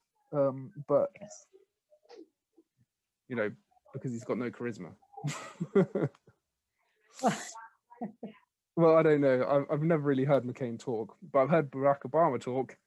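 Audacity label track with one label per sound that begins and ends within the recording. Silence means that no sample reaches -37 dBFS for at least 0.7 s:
3.310000	6.070000	sound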